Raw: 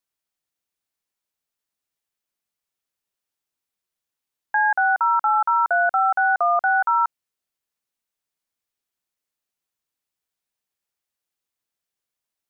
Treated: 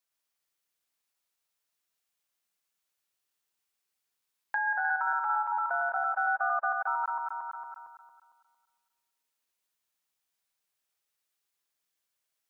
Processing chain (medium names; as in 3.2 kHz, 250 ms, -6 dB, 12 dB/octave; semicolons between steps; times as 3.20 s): backward echo that repeats 114 ms, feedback 63%, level -2.5 dB; compression 2:1, threshold -35 dBFS, peak gain reduction 13.5 dB; bass shelf 500 Hz -7.5 dB